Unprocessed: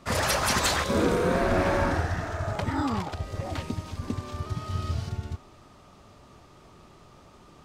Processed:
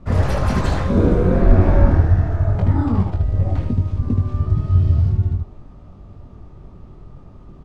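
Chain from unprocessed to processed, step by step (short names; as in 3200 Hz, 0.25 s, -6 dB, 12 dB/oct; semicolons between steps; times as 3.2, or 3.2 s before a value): tilt -4.5 dB/oct; on a send: early reflections 21 ms -5 dB, 76 ms -5.5 dB; on the sum: gain -2 dB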